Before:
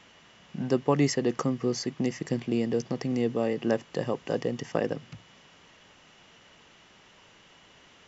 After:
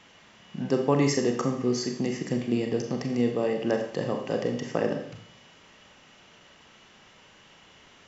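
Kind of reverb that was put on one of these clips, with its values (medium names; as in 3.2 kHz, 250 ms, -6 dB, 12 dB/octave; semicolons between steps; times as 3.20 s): Schroeder reverb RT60 0.62 s, combs from 29 ms, DRR 3.5 dB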